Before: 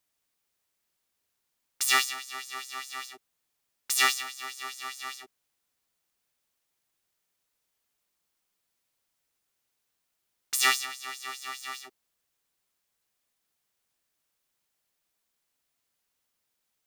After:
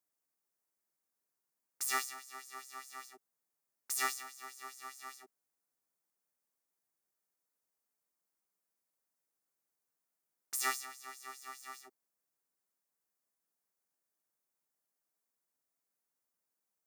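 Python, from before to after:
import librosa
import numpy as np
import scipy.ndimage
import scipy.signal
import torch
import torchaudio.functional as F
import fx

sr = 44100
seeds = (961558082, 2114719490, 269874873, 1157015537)

y = scipy.signal.sosfilt(scipy.signal.butter(2, 160.0, 'highpass', fs=sr, output='sos'), x)
y = fx.peak_eq(y, sr, hz=3200.0, db=-14.0, octaves=1.1)
y = y * librosa.db_to_amplitude(-6.5)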